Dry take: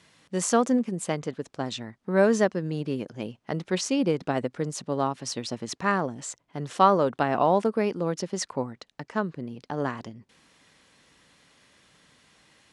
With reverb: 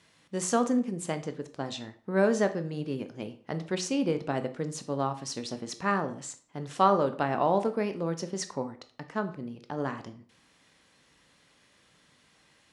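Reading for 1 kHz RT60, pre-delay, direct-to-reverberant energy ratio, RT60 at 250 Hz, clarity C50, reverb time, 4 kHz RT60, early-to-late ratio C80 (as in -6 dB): 0.45 s, 15 ms, 9.0 dB, 0.50 s, 14.0 dB, 0.45 s, 0.35 s, 18.0 dB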